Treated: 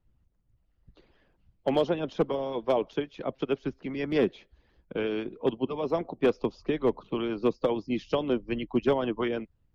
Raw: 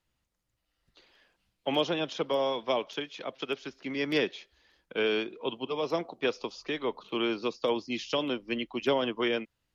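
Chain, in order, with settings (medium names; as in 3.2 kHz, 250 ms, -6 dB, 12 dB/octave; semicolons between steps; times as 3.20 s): tilt EQ -4.5 dB/octave; harmonic-percussive split harmonic -11 dB; overload inside the chain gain 17.5 dB; trim +2 dB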